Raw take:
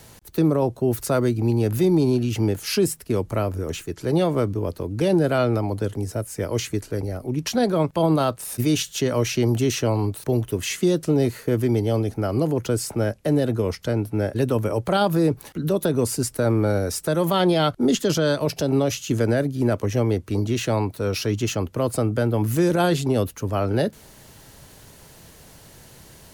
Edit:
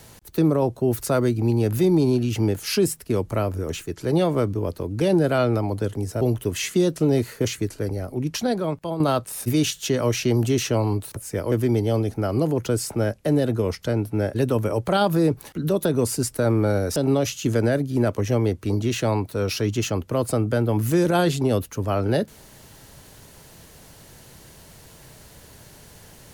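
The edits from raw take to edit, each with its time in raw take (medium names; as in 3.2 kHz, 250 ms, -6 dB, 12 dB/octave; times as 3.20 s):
6.21–6.57 s: swap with 10.28–11.52 s
7.30–8.12 s: fade out, to -10.5 dB
16.96–18.61 s: delete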